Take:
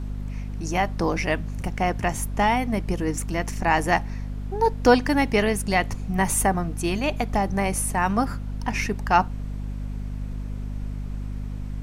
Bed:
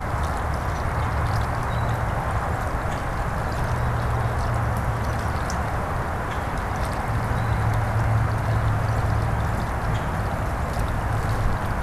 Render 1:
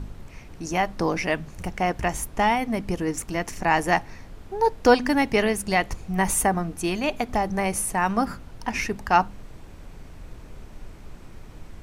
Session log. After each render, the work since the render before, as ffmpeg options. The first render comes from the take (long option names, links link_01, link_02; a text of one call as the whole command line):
ffmpeg -i in.wav -af "bandreject=frequency=50:width_type=h:width=4,bandreject=frequency=100:width_type=h:width=4,bandreject=frequency=150:width_type=h:width=4,bandreject=frequency=200:width_type=h:width=4,bandreject=frequency=250:width_type=h:width=4" out.wav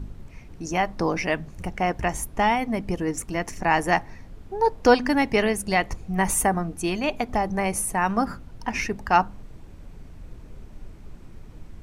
ffmpeg -i in.wav -af "afftdn=noise_reduction=6:noise_floor=-44" out.wav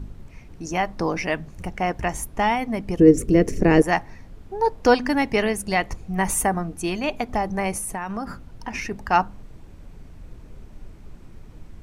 ffmpeg -i in.wav -filter_complex "[0:a]asettb=1/sr,asplit=3[link_01][link_02][link_03];[link_01]atrim=end=2.994[link_04];[link_02]atrim=start=2.99:end=3.82,asetpts=PTS-STARTPTS,afade=type=in:duration=0.004:curve=qsin,afade=type=out:start_time=0.826:duration=0.004:curve=qsin,lowshelf=frequency=610:width_type=q:width=3:gain=10.5[link_05];[link_03]atrim=start=3.816[link_06];[link_04][link_05]acrossfade=duration=0.004:curve1=hsin:curve2=qsin[link_07];[link_07][link_06]acrossfade=duration=0.004:curve1=qsin:curve2=hsin,asplit=3[link_08][link_09][link_10];[link_08]afade=type=out:start_time=7.76:duration=0.02[link_11];[link_09]acompressor=threshold=-25dB:ratio=6:attack=3.2:release=140:knee=1:detection=peak,afade=type=in:start_time=7.76:duration=0.02,afade=type=out:start_time=8.9:duration=0.02[link_12];[link_10]afade=type=in:start_time=8.9:duration=0.02[link_13];[link_11][link_12][link_13]amix=inputs=3:normalize=0" out.wav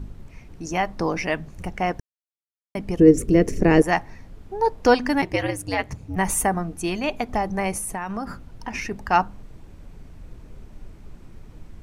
ffmpeg -i in.wav -filter_complex "[0:a]asplit=3[link_01][link_02][link_03];[link_01]afade=type=out:start_time=5.21:duration=0.02[link_04];[link_02]aeval=exprs='val(0)*sin(2*PI*98*n/s)':channel_layout=same,afade=type=in:start_time=5.21:duration=0.02,afade=type=out:start_time=6.15:duration=0.02[link_05];[link_03]afade=type=in:start_time=6.15:duration=0.02[link_06];[link_04][link_05][link_06]amix=inputs=3:normalize=0,asplit=3[link_07][link_08][link_09];[link_07]atrim=end=2,asetpts=PTS-STARTPTS,afade=type=out:start_time=1.996:duration=0.004:curve=hsin[link_10];[link_08]atrim=start=2:end=2.75,asetpts=PTS-STARTPTS,volume=0[link_11];[link_09]atrim=start=2.75,asetpts=PTS-STARTPTS,afade=type=in:duration=0.004:curve=hsin[link_12];[link_10][link_11][link_12]concat=n=3:v=0:a=1" out.wav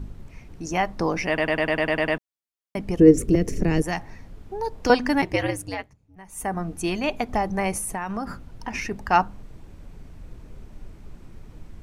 ffmpeg -i in.wav -filter_complex "[0:a]asettb=1/sr,asplit=3[link_01][link_02][link_03];[link_01]atrim=end=3.354[link_04];[link_02]atrim=start=3.35:end=4.9,asetpts=PTS-STARTPTS,afade=type=in:duration=0.004:curve=qsin,afade=type=out:start_time=1.546:duration=0.004:curve=qsin,acrossover=split=220|3000[link_05][link_06][link_07];[link_06]acompressor=threshold=-28dB:ratio=2.5:attack=3.2:release=140:knee=2.83:detection=peak[link_08];[link_05][link_08][link_07]amix=inputs=3:normalize=0[link_09];[link_03]atrim=start=4.896[link_10];[link_04][link_09]acrossfade=duration=0.004:curve1=hsin:curve2=qsin[link_11];[link_11][link_10]acrossfade=duration=0.004:curve1=qsin:curve2=hsin,asplit=12[link_12][link_13][link_14][link_15][link_16][link_17][link_18][link_19][link_20][link_21][link_22][link_23];[link_12]atrim=end=1.382[link_24];[link_13]atrim=start=1.278:end=1.382[link_25];[link_14]atrim=start=1.278:end=1.382[link_26];[link_15]atrim=start=1.278:end=1.382[link_27];[link_16]atrim=start=1.278:end=1.382[link_28];[link_17]atrim=start=1.278:end=1.382[link_29];[link_18]atrim=start=1.278:end=1.382[link_30];[link_19]atrim=start=1.278:end=1.382[link_31];[link_20]atrim=start=1.278:end=1.382[link_32];[link_21]atrim=start=2.178:end=5.92,asetpts=PTS-STARTPTS,afade=type=out:start_time=3.362:duration=0.38:silence=0.0707946[link_33];[link_22]atrim=start=5.92:end=6.31,asetpts=PTS-STARTPTS,volume=-23dB[link_34];[link_23]atrim=start=6.31,asetpts=PTS-STARTPTS,afade=type=in:duration=0.38:silence=0.0707946[link_35];[link_24][link_25]acrossfade=duration=0.004:curve1=hsin:curve2=hsin[link_36];[link_36][link_26]acrossfade=duration=0.004:curve1=hsin:curve2=hsin[link_37];[link_37][link_27]acrossfade=duration=0.004:curve1=hsin:curve2=hsin[link_38];[link_38][link_28]acrossfade=duration=0.004:curve1=hsin:curve2=hsin[link_39];[link_39][link_29]acrossfade=duration=0.004:curve1=hsin:curve2=hsin[link_40];[link_40][link_30]acrossfade=duration=0.004:curve1=hsin:curve2=hsin[link_41];[link_41][link_31]acrossfade=duration=0.004:curve1=hsin:curve2=hsin[link_42];[link_42][link_32]acrossfade=duration=0.004:curve1=hsin:curve2=hsin[link_43];[link_33][link_34][link_35]concat=n=3:v=0:a=1[link_44];[link_43][link_44]acrossfade=duration=0.004:curve1=hsin:curve2=hsin" out.wav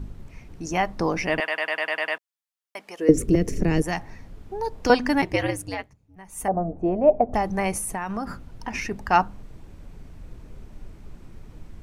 ffmpeg -i in.wav -filter_complex "[0:a]asettb=1/sr,asplit=3[link_01][link_02][link_03];[link_01]atrim=end=1.404[link_04];[link_02]atrim=start=1.4:end=3.09,asetpts=PTS-STARTPTS,afade=type=in:duration=0.004:curve=qsin,afade=type=out:start_time=1.686:duration=0.004:curve=qsin,highpass=820[link_05];[link_03]atrim=start=3.086[link_06];[link_04][link_05]acrossfade=duration=0.004:curve1=hsin:curve2=qsin[link_07];[link_07][link_06]acrossfade=duration=0.004:curve1=qsin:curve2=hsin,asettb=1/sr,asplit=3[link_08][link_09][link_10];[link_08]atrim=end=6.484[link_11];[link_09]atrim=start=6.48:end=7.34,asetpts=PTS-STARTPTS,afade=type=in:duration=0.004:curve=qsin,afade=type=out:start_time=0.856:duration=0.004:curve=qsin,lowpass=frequency=630:width_type=q:width=4.5[link_12];[link_10]atrim=start=7.336[link_13];[link_11][link_12]acrossfade=duration=0.004:curve1=hsin:curve2=qsin[link_14];[link_14][link_13]acrossfade=duration=0.004:curve1=qsin:curve2=hsin" out.wav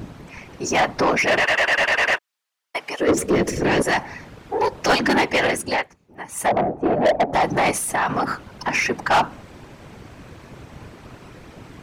ffmpeg -i in.wav -filter_complex "[0:a]afftfilt=real='hypot(re,im)*cos(2*PI*random(0))':imag='hypot(re,im)*sin(2*PI*random(1))':win_size=512:overlap=0.75,asplit=2[link_01][link_02];[link_02]highpass=frequency=720:poles=1,volume=27dB,asoftclip=type=tanh:threshold=-8.5dB[link_03];[link_01][link_03]amix=inputs=2:normalize=0,lowpass=frequency=4100:poles=1,volume=-6dB" out.wav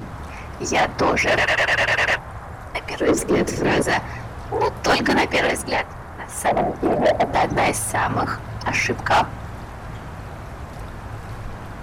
ffmpeg -i in.wav -i bed.wav -filter_complex "[1:a]volume=-10dB[link_01];[0:a][link_01]amix=inputs=2:normalize=0" out.wav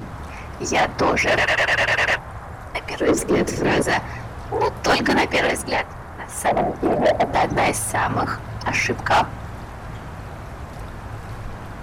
ffmpeg -i in.wav -af anull out.wav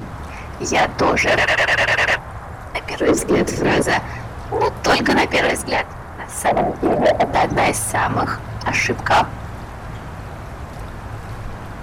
ffmpeg -i in.wav -af "volume=2.5dB" out.wav